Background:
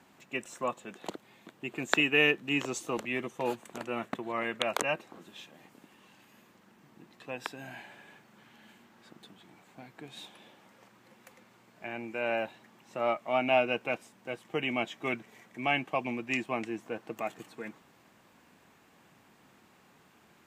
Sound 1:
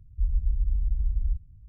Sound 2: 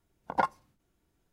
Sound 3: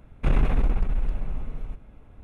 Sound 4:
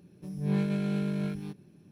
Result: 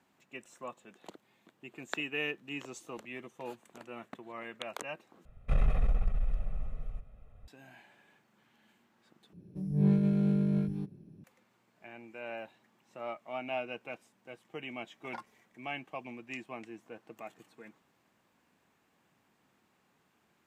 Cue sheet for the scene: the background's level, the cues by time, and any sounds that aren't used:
background -10.5 dB
5.25 replace with 3 -10.5 dB + comb 1.6 ms, depth 78%
9.33 replace with 4 -4 dB + tilt shelf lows +7.5 dB, about 750 Hz
14.75 add 2 -16.5 dB + tilt shelf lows -6.5 dB, about 1200 Hz
not used: 1

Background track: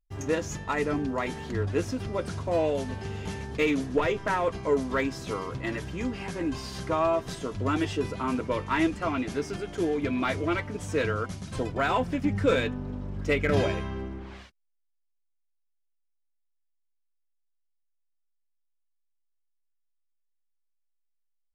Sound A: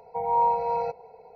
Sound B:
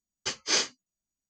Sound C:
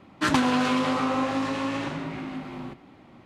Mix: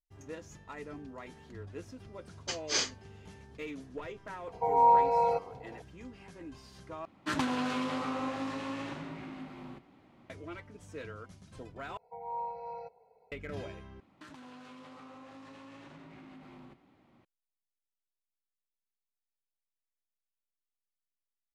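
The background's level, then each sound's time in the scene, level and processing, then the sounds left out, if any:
background track -16.5 dB
2.22 add B -5 dB
4.47 add A
7.05 replace with C -9.5 dB
11.97 replace with A -15.5 dB
14 replace with C -14 dB + compressor 12:1, threshold -33 dBFS

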